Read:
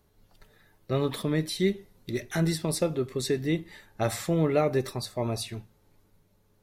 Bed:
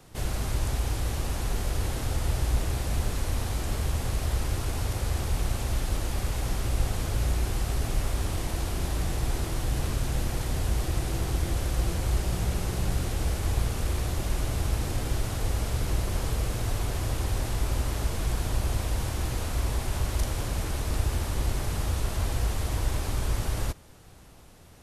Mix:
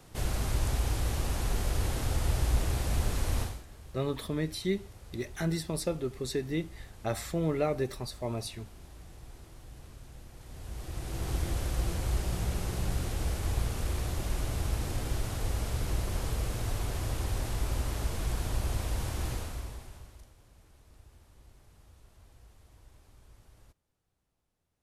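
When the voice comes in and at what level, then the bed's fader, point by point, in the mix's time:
3.05 s, -5.0 dB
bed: 3.42 s -1.5 dB
3.66 s -21 dB
10.33 s -21 dB
11.32 s -4 dB
19.32 s -4 dB
20.36 s -29.5 dB

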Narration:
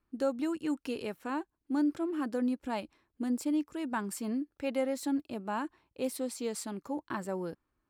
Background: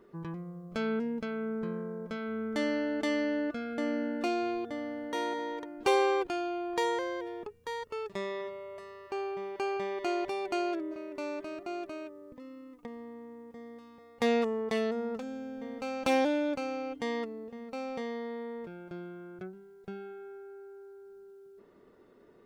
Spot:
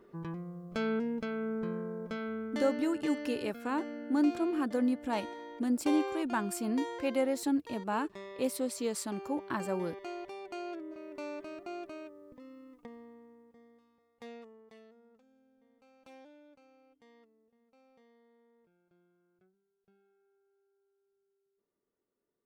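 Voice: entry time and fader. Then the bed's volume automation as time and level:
2.40 s, +1.5 dB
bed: 2.22 s -0.5 dB
2.9 s -10 dB
10.54 s -10 dB
11.11 s -4 dB
12.77 s -4 dB
14.95 s -28 dB

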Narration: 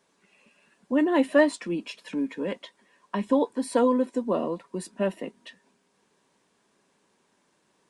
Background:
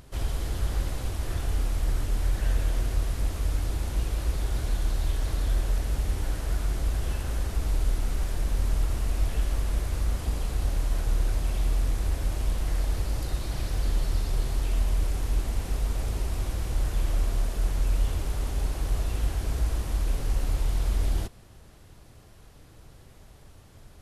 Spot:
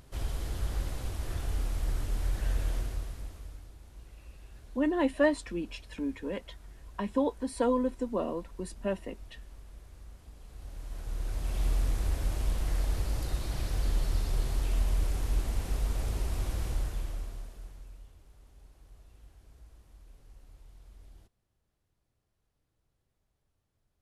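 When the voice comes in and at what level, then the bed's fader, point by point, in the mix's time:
3.85 s, -5.5 dB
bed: 2.74 s -5 dB
3.74 s -22.5 dB
10.35 s -22.5 dB
11.65 s -3 dB
16.67 s -3 dB
18.13 s -28 dB

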